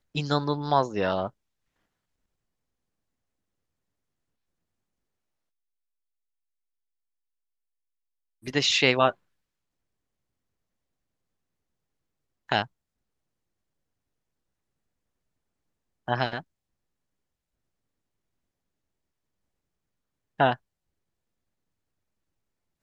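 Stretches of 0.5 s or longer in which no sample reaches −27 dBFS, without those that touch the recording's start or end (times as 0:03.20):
0:01.27–0:08.48
0:09.10–0:12.52
0:12.63–0:16.08
0:16.39–0:20.40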